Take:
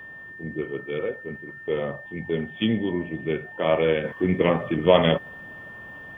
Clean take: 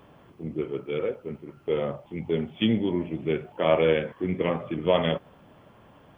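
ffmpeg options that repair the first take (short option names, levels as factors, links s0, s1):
-af "bandreject=f=1800:w=30,asetnsamples=n=441:p=0,asendcmd='4.04 volume volume -5.5dB',volume=1"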